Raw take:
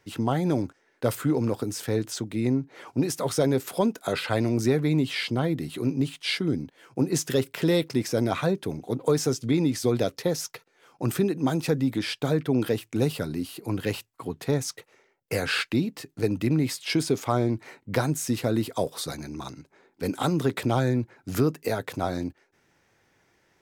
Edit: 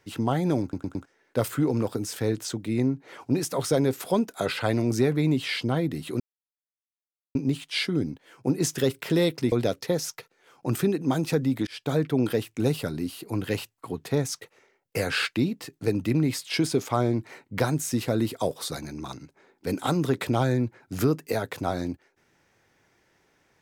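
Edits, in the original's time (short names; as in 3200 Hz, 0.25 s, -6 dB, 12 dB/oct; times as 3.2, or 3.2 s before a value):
0.62 stutter 0.11 s, 4 plays
5.87 insert silence 1.15 s
8.04–9.88 cut
12.03–12.34 fade in equal-power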